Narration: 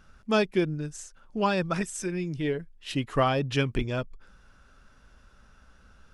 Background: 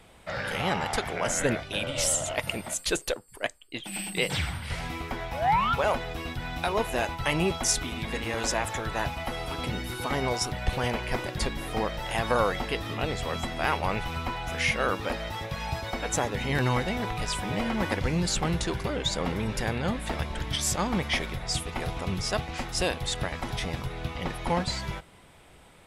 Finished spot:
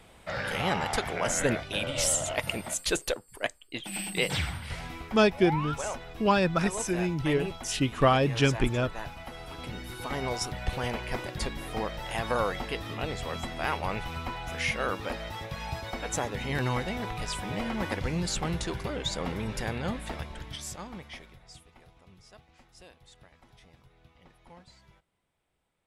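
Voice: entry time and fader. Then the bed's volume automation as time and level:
4.85 s, +2.0 dB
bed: 4.37 s -0.5 dB
5.33 s -9.5 dB
9.36 s -9.5 dB
10.31 s -3.5 dB
19.94 s -3.5 dB
21.91 s -25.5 dB

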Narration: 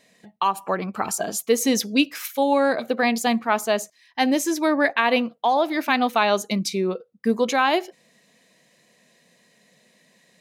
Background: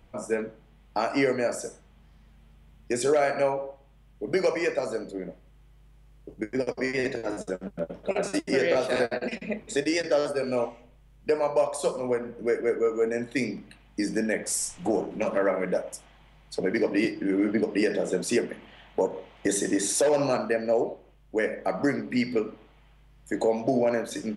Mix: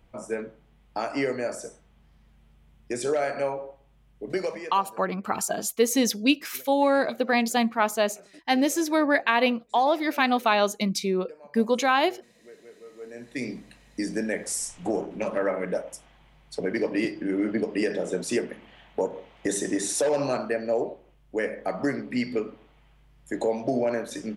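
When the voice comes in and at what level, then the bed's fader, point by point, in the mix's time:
4.30 s, -2.0 dB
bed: 4.37 s -3 dB
5.09 s -23.5 dB
12.81 s -23.5 dB
13.49 s -1.5 dB

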